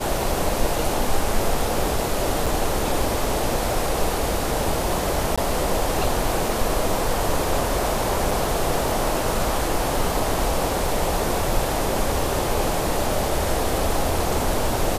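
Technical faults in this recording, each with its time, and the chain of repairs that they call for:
2.46–2.47 gap 5.5 ms
5.36–5.38 gap 16 ms
8.31 gap 3.4 ms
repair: interpolate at 2.46, 5.5 ms; interpolate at 5.36, 16 ms; interpolate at 8.31, 3.4 ms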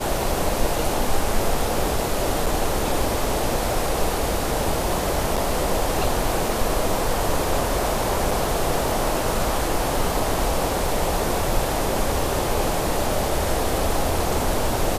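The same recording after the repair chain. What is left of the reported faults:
none

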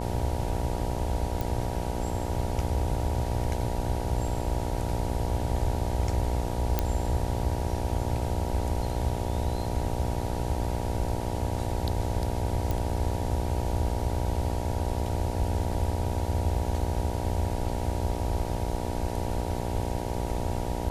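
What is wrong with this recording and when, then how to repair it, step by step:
buzz 60 Hz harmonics 16 -33 dBFS
1.41 pop
6.79 pop -10 dBFS
12.71 pop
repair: de-click; de-hum 60 Hz, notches 16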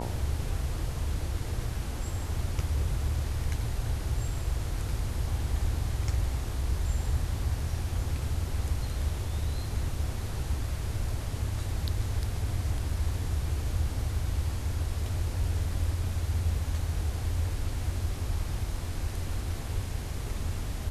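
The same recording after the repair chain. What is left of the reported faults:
none

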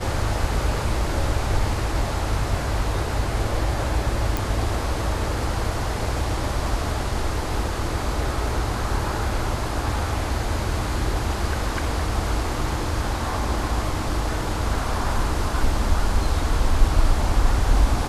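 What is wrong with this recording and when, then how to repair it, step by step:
4.37 pop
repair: de-click

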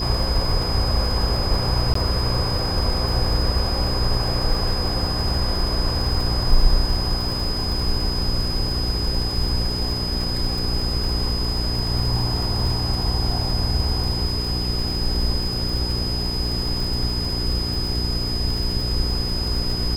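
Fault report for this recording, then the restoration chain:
crackle 52/s -26 dBFS
hum 60 Hz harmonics 7 -27 dBFS
tone 5000 Hz -26 dBFS
1.94–1.95 gap 14 ms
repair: de-click; de-hum 60 Hz, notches 7; notch 5000 Hz, Q 30; interpolate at 1.94, 14 ms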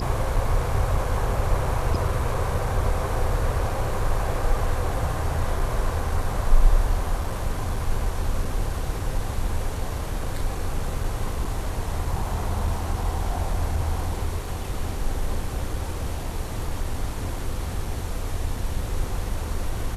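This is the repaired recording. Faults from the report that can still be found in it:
none

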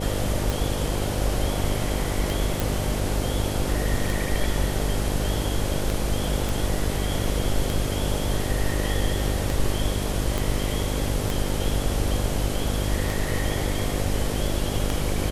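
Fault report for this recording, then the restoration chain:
buzz 50 Hz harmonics 12 -28 dBFS
tick 33 1/3 rpm
2.6 pop
6.49 pop
10.38 pop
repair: de-click; de-hum 50 Hz, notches 12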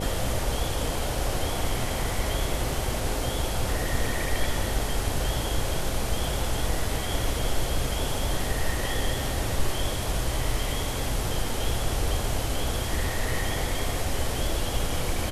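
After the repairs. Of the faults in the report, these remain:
10.38 pop

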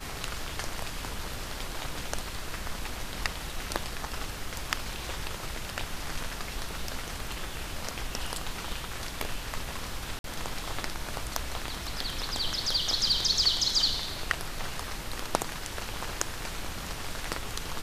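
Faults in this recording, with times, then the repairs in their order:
10.19–10.24 gap 52 ms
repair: interpolate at 10.19, 52 ms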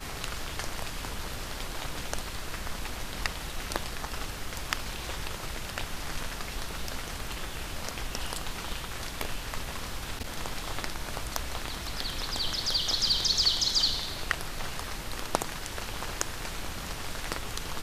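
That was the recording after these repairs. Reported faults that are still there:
none

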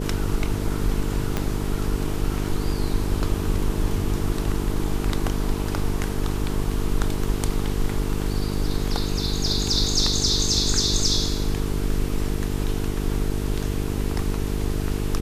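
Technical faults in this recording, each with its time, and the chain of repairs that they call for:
buzz 50 Hz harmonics 9 -27 dBFS
1.37 pop -10 dBFS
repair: de-click; de-hum 50 Hz, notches 9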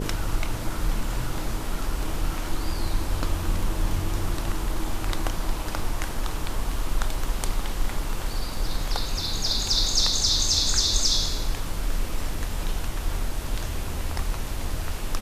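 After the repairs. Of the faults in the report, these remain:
1.37 pop

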